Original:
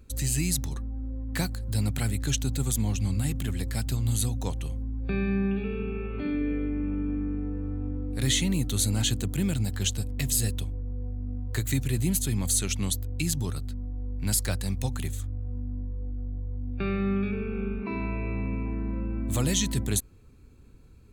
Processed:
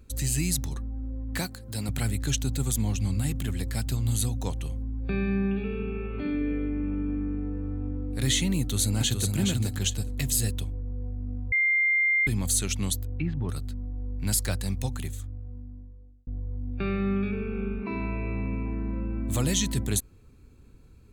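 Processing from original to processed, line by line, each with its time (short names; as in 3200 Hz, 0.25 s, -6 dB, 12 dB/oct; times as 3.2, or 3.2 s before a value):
1.39–1.89 HPF 220 Hz 6 dB/oct
8.58–9.36 echo throw 0.42 s, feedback 15%, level -4.5 dB
11.52–12.27 bleep 2100 Hz -20 dBFS
13.07–13.49 LPF 2200 Hz 24 dB/oct
14.72–16.27 fade out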